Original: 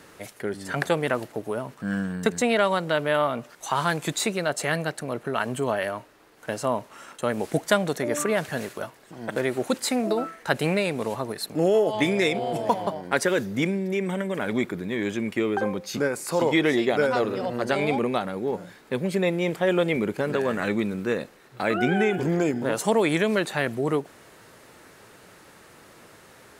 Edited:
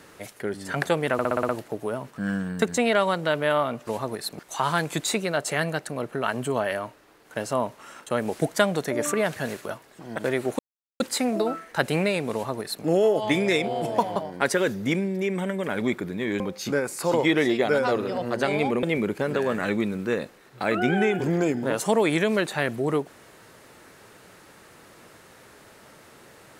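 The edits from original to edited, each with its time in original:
0:01.13: stutter 0.06 s, 7 plays
0:09.71: splice in silence 0.41 s
0:11.04–0:11.56: duplicate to 0:03.51
0:15.11–0:15.68: remove
0:18.11–0:19.82: remove

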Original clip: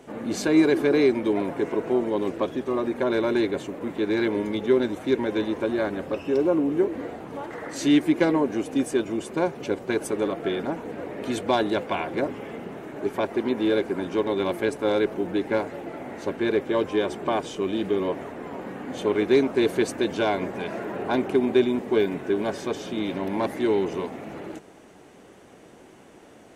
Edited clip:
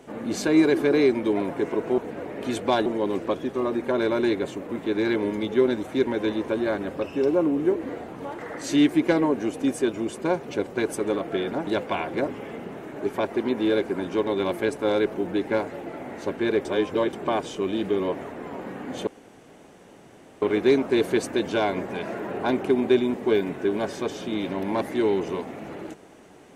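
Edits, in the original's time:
0:10.79–0:11.67: move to 0:01.98
0:16.65–0:17.13: reverse
0:19.07: splice in room tone 1.35 s

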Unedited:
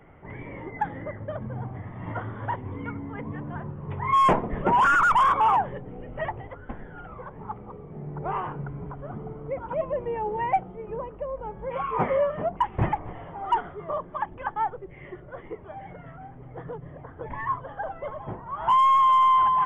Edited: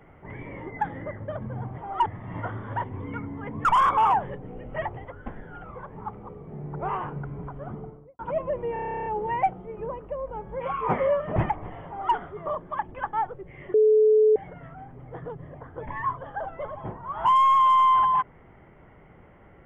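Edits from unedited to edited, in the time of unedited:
0:03.37–0:05.08: remove
0:09.12–0:09.62: fade out and dull
0:10.16: stutter 0.03 s, 12 plays
0:12.46–0:12.79: remove
0:13.30–0:13.58: duplicate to 0:01.78
0:15.17–0:15.79: beep over 431 Hz −14.5 dBFS

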